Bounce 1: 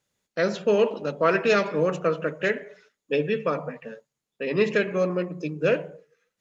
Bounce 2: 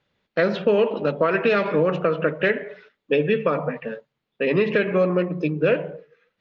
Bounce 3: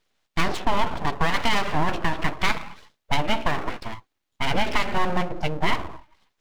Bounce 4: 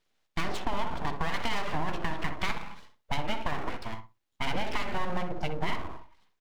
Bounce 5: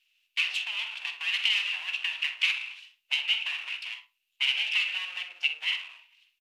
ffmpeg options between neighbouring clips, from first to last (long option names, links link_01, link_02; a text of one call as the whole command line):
ffmpeg -i in.wav -af "lowpass=frequency=3800:width=0.5412,lowpass=frequency=3800:width=1.3066,alimiter=limit=-14dB:level=0:latency=1:release=128,acompressor=threshold=-26dB:ratio=2,volume=8dB" out.wav
ffmpeg -i in.wav -af "highshelf=frequency=4200:gain=8,aeval=exprs='abs(val(0))':channel_layout=same" out.wav
ffmpeg -i in.wav -filter_complex "[0:a]acompressor=threshold=-20dB:ratio=6,asplit=2[link_01][link_02];[link_02]adelay=63,lowpass=frequency=1600:poles=1,volume=-7dB,asplit=2[link_03][link_04];[link_04]adelay=63,lowpass=frequency=1600:poles=1,volume=0.18,asplit=2[link_05][link_06];[link_06]adelay=63,lowpass=frequency=1600:poles=1,volume=0.18[link_07];[link_01][link_03][link_05][link_07]amix=inputs=4:normalize=0,volume=-4.5dB" out.wav
ffmpeg -i in.wav -filter_complex "[0:a]highpass=frequency=2700:width_type=q:width=10,asplit=2[link_01][link_02];[link_02]adelay=46,volume=-12dB[link_03];[link_01][link_03]amix=inputs=2:normalize=0" -ar 48000 -c:a mp2 -b:a 96k out.mp2